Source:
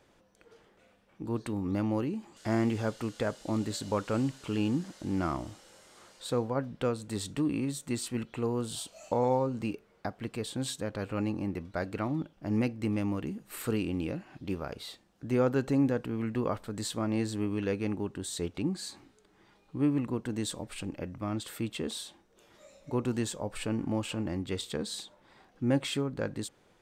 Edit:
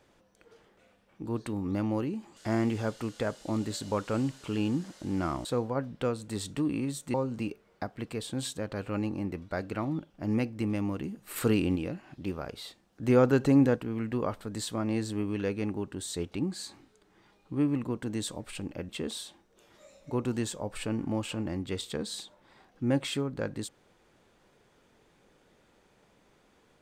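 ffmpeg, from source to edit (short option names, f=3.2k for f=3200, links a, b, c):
-filter_complex "[0:a]asplit=8[a][b][c][d][e][f][g][h];[a]atrim=end=5.452[i];[b]atrim=start=6.248:end=7.942[j];[c]atrim=start=9.368:end=13.592[k];[d]atrim=start=13.588:end=13.992,asetpts=PTS-STARTPTS,volume=5dB[l];[e]atrim=start=13.988:end=15.262[m];[f]atrim=start=15.258:end=15.992,asetpts=PTS-STARTPTS,volume=4.5dB[n];[g]atrim=start=15.988:end=21.122[o];[h]atrim=start=21.688[p];[i][j]acrossfade=d=0.004:c1=hsin:c2=hsin[q];[q][k]acrossfade=d=0.004:c1=hsin:c2=hsin[r];[r][l]acrossfade=d=0.004:c1=hsin:c2=hsin[s];[s][m]acrossfade=d=0.004:c1=hsin:c2=hsin[t];[t][n]acrossfade=d=0.004:c1=hsin:c2=hsin[u];[u][o]acrossfade=d=0.004:c1=hsin:c2=hsin[v];[v][p]acrossfade=d=0.004:c1=hsin:c2=hsin"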